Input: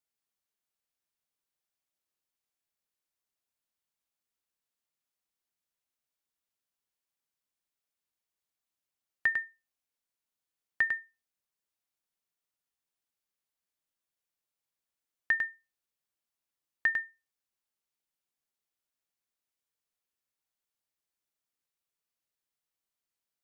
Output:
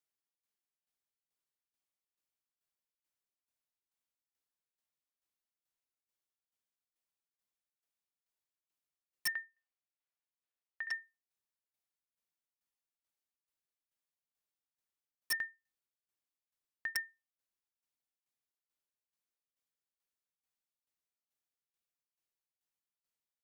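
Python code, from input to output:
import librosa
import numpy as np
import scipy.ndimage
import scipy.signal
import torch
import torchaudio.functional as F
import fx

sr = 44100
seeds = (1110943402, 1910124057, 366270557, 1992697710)

y = fx.tremolo_shape(x, sr, shape='saw_down', hz=2.3, depth_pct=85)
y = (np.mod(10.0 ** (25.0 / 20.0) * y + 1.0, 2.0) - 1.0) / 10.0 ** (25.0 / 20.0)
y = fx.bandpass_edges(y, sr, low_hz=430.0, high_hz=3600.0, at=(9.32, 11.0))
y = y * librosa.db_to_amplitude(-2.5)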